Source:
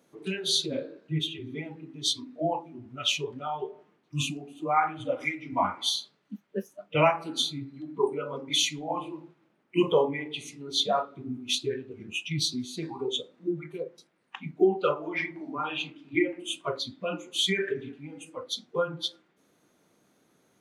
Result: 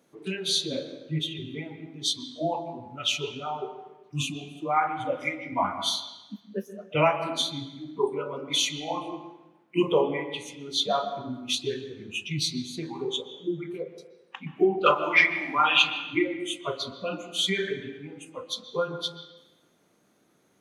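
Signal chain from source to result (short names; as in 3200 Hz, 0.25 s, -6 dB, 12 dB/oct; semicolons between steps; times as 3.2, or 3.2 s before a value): 14.86–15.98 EQ curve 450 Hz 0 dB, 750 Hz +9 dB, 1400 Hz +11 dB, 3500 Hz +14 dB; on a send: reverb RT60 1.0 s, pre-delay 0.116 s, DRR 10 dB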